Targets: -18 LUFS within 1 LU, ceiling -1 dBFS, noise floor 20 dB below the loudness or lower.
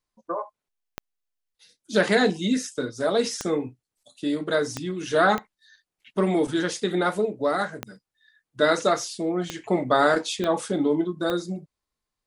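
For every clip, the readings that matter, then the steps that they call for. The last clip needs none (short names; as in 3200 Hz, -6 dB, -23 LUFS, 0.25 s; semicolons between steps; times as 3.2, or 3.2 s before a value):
clicks 8; loudness -25.0 LUFS; peak -7.0 dBFS; loudness target -18.0 LUFS
-> de-click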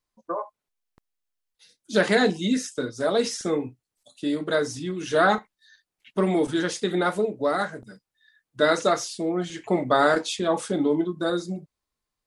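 clicks 0; loudness -25.0 LUFS; peak -7.0 dBFS; loudness target -18.0 LUFS
-> gain +7 dB; limiter -1 dBFS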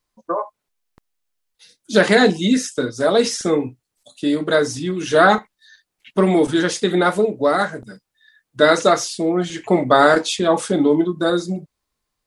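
loudness -18.0 LUFS; peak -1.0 dBFS; noise floor -79 dBFS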